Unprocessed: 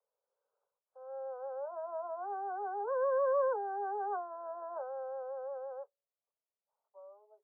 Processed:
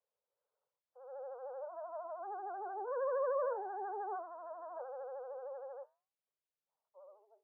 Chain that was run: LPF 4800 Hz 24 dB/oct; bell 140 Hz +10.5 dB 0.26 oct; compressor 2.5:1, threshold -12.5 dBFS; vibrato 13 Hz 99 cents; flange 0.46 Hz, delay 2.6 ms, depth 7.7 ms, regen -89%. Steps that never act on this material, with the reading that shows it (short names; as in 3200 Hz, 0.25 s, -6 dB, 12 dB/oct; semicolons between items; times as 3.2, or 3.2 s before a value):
LPF 4800 Hz: input band ends at 1600 Hz; bell 140 Hz: input band starts at 340 Hz; compressor, threshold -12.5 dBFS: input peak -23.0 dBFS